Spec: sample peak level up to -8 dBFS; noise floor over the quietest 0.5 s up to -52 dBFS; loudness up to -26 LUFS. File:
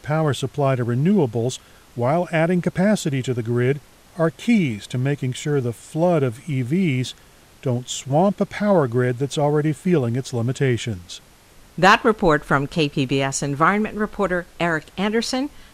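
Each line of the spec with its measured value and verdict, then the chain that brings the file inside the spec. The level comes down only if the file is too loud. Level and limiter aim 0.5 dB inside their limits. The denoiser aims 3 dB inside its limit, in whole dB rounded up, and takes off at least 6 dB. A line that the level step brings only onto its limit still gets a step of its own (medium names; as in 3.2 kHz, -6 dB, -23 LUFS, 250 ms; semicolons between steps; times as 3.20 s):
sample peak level -3.0 dBFS: fail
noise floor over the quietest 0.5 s -49 dBFS: fail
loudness -21.0 LUFS: fail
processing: trim -5.5 dB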